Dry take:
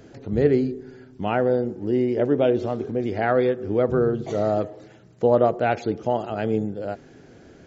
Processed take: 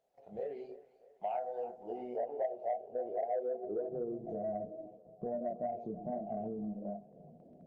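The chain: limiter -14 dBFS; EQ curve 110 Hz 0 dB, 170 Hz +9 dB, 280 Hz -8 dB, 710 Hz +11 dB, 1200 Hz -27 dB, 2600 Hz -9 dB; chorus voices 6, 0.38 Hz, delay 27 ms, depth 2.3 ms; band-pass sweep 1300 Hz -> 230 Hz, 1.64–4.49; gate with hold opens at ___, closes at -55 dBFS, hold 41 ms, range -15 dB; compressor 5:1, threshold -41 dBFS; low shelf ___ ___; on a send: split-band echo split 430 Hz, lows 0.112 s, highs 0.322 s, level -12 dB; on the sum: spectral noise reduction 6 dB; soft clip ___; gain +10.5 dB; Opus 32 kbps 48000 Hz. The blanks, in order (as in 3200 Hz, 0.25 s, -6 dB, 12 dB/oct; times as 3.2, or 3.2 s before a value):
-49 dBFS, 350 Hz, -12 dB, -34 dBFS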